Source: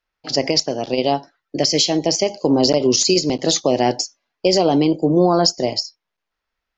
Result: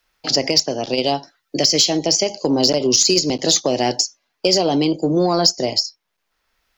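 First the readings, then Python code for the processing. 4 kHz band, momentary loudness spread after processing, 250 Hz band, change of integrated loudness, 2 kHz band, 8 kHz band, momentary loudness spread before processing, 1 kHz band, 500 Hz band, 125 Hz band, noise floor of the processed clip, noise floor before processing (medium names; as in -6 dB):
+3.0 dB, 8 LU, -2.0 dB, +0.5 dB, +1.0 dB, no reading, 8 LU, -2.0 dB, -1.5 dB, -2.0 dB, -74 dBFS, -81 dBFS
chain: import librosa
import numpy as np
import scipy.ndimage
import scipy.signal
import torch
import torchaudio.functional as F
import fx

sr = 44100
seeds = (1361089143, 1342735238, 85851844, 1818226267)

p1 = fx.high_shelf(x, sr, hz=3900.0, db=9.0)
p2 = 10.0 ** (-6.5 / 20.0) * np.tanh(p1 / 10.0 ** (-6.5 / 20.0))
p3 = p1 + (p2 * 10.0 ** (-5.0 / 20.0))
p4 = fx.band_squash(p3, sr, depth_pct=40)
y = p4 * 10.0 ** (-5.5 / 20.0)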